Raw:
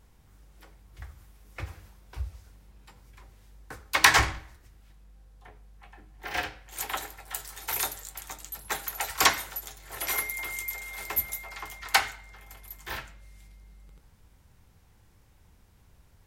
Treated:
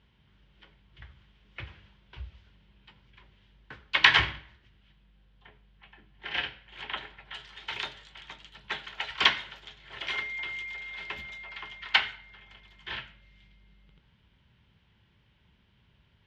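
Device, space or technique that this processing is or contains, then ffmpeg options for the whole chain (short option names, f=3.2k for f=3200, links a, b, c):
guitar cabinet: -filter_complex "[0:a]highpass=78,equalizer=f=87:t=q:w=4:g=-8,equalizer=f=300:t=q:w=4:g=-7,equalizer=f=490:t=q:w=4:g=-8,equalizer=f=750:t=q:w=4:g=-10,equalizer=f=1.2k:t=q:w=4:g=-6,equalizer=f=3.1k:t=q:w=4:g=9,lowpass=f=3.7k:w=0.5412,lowpass=f=3.7k:w=1.3066,asettb=1/sr,asplit=3[a][b][c];[a]atrim=end=6.684[d];[b]atrim=start=6.68:end=7.33,asetpts=PTS-STARTPTS,afade=t=in:d=0.004:c=qsin,afade=t=out:st=0.646:d=0.004:c=qsin,bass=f=250:g=2,treble=f=4k:g=-10[e];[c]atrim=start=7.326[f];[d][e]acrossfade=d=0.004:c1=hsin:c2=qsin[g];[g][f]acrossfade=d=0.004:c1=qsin:c2=hsin"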